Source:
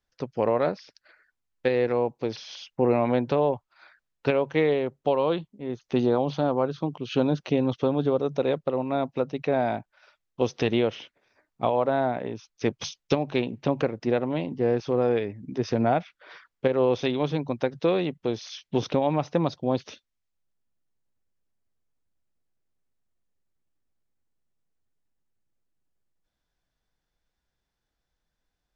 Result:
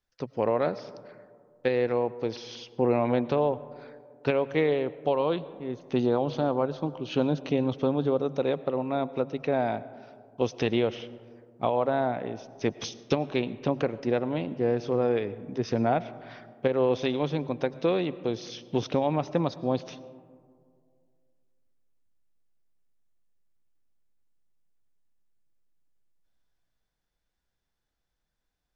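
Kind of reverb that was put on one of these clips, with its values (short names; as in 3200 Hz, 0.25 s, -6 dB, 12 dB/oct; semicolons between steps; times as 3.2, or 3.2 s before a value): digital reverb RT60 2.1 s, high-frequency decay 0.3×, pre-delay 65 ms, DRR 17 dB; gain -2 dB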